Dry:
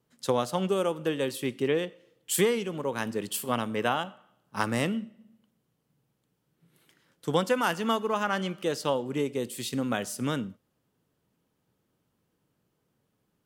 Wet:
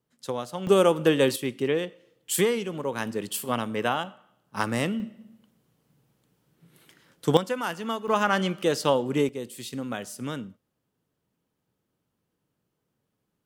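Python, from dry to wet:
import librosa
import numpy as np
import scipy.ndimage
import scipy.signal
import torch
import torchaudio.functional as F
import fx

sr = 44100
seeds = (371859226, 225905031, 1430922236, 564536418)

y = fx.gain(x, sr, db=fx.steps((0.0, -5.0), (0.67, 8.0), (1.36, 1.0), (5.0, 7.0), (7.37, -3.5), (8.08, 5.0), (9.29, -3.5)))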